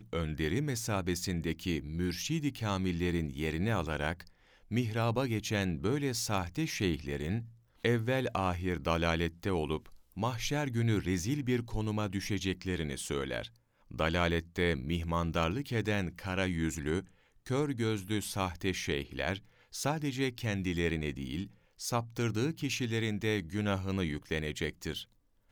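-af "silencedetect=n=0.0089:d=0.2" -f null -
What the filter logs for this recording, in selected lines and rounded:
silence_start: 4.27
silence_end: 4.71 | silence_duration: 0.44
silence_start: 7.43
silence_end: 7.85 | silence_duration: 0.42
silence_start: 9.86
silence_end: 10.17 | silence_duration: 0.31
silence_start: 13.47
silence_end: 13.91 | silence_duration: 0.44
silence_start: 17.02
silence_end: 17.46 | silence_duration: 0.44
silence_start: 19.38
silence_end: 19.74 | silence_duration: 0.36
silence_start: 21.47
silence_end: 21.80 | silence_duration: 0.34
silence_start: 25.03
silence_end: 25.51 | silence_duration: 0.49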